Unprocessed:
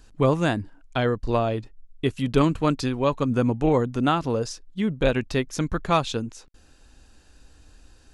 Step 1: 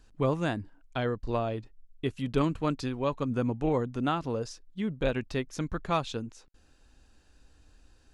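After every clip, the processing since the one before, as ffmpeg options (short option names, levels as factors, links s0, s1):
-af "highshelf=f=7000:g=-5,volume=0.447"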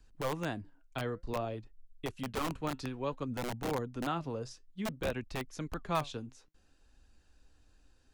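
-filter_complex "[0:a]flanger=delay=0.4:depth=7.4:regen=76:speed=0.56:shape=sinusoidal,acrossover=split=340|400|4100[s0][s1][s2][s3];[s0]aeval=exprs='(mod(31.6*val(0)+1,2)-1)/31.6':c=same[s4];[s4][s1][s2][s3]amix=inputs=4:normalize=0,volume=0.841"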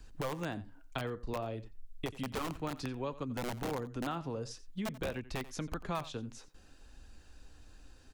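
-af "acompressor=threshold=0.00447:ratio=3,aecho=1:1:88:0.141,volume=2.82"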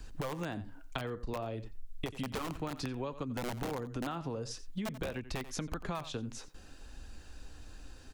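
-af "acompressor=threshold=0.01:ratio=6,volume=2"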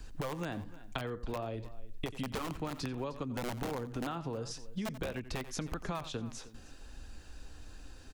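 -af "aecho=1:1:308:0.133"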